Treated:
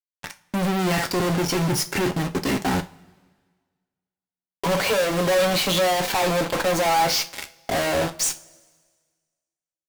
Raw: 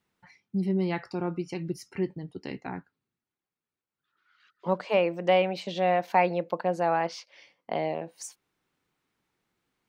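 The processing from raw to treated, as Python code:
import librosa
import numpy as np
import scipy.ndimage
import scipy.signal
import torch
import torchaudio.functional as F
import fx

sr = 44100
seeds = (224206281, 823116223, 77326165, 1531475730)

y = fx.leveller(x, sr, passes=5)
y = fx.fuzz(y, sr, gain_db=48.0, gate_db=-58.0)
y = fx.rev_double_slope(y, sr, seeds[0], early_s=0.26, late_s=1.6, knee_db=-22, drr_db=6.5)
y = F.gain(torch.from_numpy(y), -7.5).numpy()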